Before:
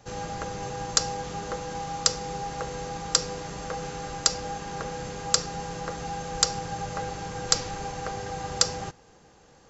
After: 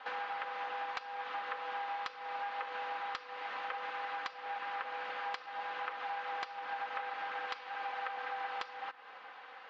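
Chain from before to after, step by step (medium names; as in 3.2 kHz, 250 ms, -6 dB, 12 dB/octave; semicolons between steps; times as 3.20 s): comb filter that takes the minimum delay 3.9 ms; Butterworth band-pass 2 kHz, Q 0.69; compression 6:1, threshold -51 dBFS, peak gain reduction 23.5 dB; distance through air 370 m; trim +16 dB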